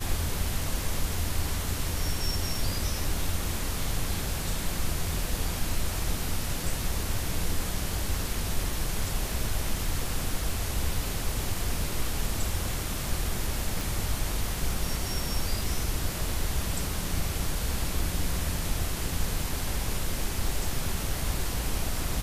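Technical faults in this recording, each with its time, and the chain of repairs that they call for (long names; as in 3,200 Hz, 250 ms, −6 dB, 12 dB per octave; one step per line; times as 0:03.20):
0:13.81: click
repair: click removal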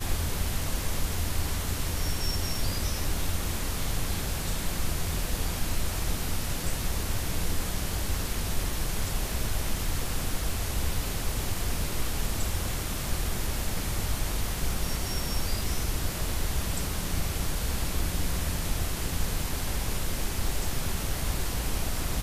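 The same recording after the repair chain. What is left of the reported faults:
none of them is left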